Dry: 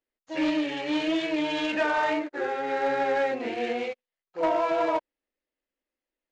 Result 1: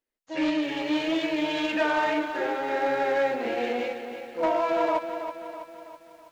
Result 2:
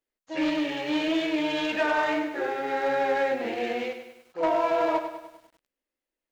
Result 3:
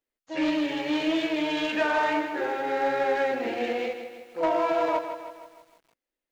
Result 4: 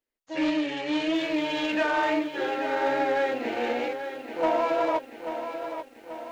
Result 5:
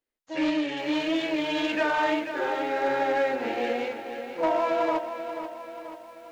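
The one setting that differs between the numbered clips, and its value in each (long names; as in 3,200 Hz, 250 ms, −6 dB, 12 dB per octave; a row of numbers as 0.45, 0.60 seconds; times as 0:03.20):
feedback echo at a low word length, delay time: 326, 100, 158, 836, 485 milliseconds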